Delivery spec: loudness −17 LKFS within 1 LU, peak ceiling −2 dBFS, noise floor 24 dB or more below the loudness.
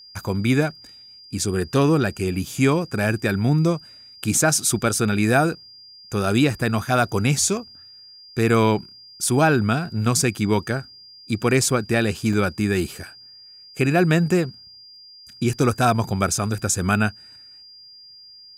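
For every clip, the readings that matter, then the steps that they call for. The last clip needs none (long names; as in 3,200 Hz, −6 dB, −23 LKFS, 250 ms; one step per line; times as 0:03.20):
number of dropouts 1; longest dropout 3.6 ms; interfering tone 4,800 Hz; level of the tone −43 dBFS; integrated loudness −21.0 LKFS; sample peak −4.5 dBFS; target loudness −17.0 LKFS
→ repair the gap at 0:12.33, 3.6 ms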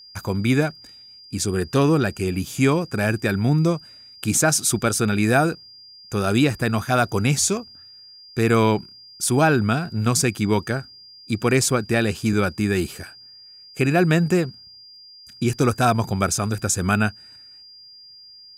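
number of dropouts 0; interfering tone 4,800 Hz; level of the tone −43 dBFS
→ notch filter 4,800 Hz, Q 30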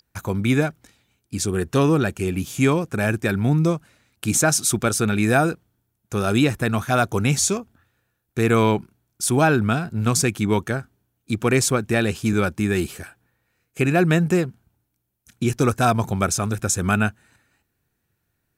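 interfering tone none found; integrated loudness −21.0 LKFS; sample peak −5.0 dBFS; target loudness −17.0 LKFS
→ level +4 dB
brickwall limiter −2 dBFS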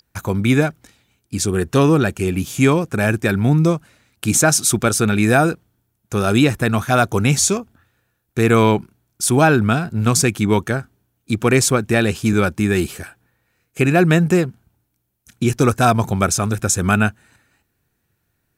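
integrated loudness −17.0 LKFS; sample peak −2.0 dBFS; background noise floor −71 dBFS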